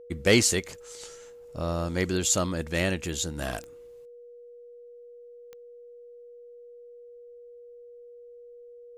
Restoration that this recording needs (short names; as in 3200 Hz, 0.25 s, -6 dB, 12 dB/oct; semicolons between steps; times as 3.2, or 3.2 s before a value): de-click; notch 480 Hz, Q 30